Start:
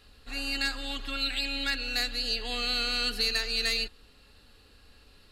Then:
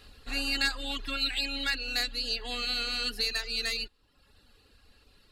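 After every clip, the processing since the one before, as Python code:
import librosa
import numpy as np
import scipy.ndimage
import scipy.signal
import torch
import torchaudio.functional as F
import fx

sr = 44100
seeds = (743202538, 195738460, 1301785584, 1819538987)

y = fx.dereverb_blind(x, sr, rt60_s=0.8)
y = fx.rider(y, sr, range_db=5, speed_s=2.0)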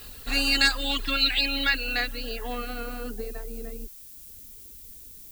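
y = fx.filter_sweep_lowpass(x, sr, from_hz=14000.0, to_hz=350.0, start_s=0.39, end_s=3.78, q=0.82)
y = fx.dmg_noise_colour(y, sr, seeds[0], colour='violet', level_db=-53.0)
y = y * librosa.db_to_amplitude(7.0)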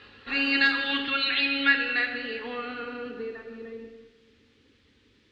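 y = fx.cabinet(x, sr, low_hz=140.0, low_slope=12, high_hz=3400.0, hz=(180.0, 680.0, 1800.0), db=(-8, -9, 4))
y = fx.rev_plate(y, sr, seeds[1], rt60_s=1.5, hf_ratio=0.9, predelay_ms=0, drr_db=4.0)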